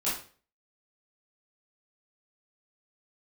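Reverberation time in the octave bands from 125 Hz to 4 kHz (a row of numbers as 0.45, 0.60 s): 0.45, 0.40, 0.45, 0.40, 0.40, 0.35 s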